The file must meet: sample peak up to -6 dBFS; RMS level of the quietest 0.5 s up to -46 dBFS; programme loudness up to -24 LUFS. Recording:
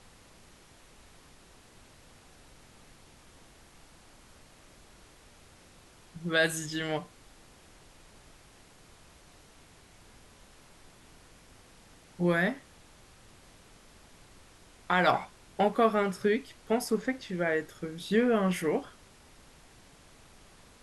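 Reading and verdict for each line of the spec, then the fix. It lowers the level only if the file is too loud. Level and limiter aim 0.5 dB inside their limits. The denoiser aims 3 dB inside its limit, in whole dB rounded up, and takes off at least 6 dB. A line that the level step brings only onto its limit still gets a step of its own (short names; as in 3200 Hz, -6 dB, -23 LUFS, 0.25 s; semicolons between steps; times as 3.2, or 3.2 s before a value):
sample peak -11.0 dBFS: OK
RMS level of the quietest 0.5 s -56 dBFS: OK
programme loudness -29.5 LUFS: OK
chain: none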